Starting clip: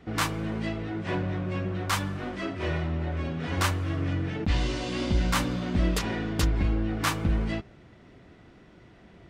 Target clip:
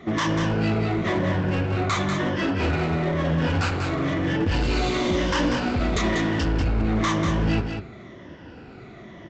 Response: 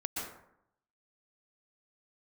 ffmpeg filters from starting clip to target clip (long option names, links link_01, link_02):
-af "afftfilt=real='re*pow(10,11/40*sin(2*PI*(1.2*log(max(b,1)*sr/1024/100)/log(2)-(-1)*(pts-256)/sr)))':imag='im*pow(10,11/40*sin(2*PI*(1.2*log(max(b,1)*sr/1024/100)/log(2)-(-1)*(pts-256)/sr)))':win_size=1024:overlap=0.75,highpass=frequency=70:poles=1,highshelf=frequency=4400:gain=-6,bandreject=frequency=60:width_type=h:width=6,bandreject=frequency=120:width_type=h:width=6,bandreject=frequency=180:width_type=h:width=6,alimiter=limit=-22.5dB:level=0:latency=1:release=41,acontrast=71,flanger=delay=7.4:depth=7:regen=82:speed=1.6:shape=sinusoidal,aresample=16000,volume=27dB,asoftclip=hard,volume=-27dB,aresample=44100,aecho=1:1:192:0.501,volume=7dB"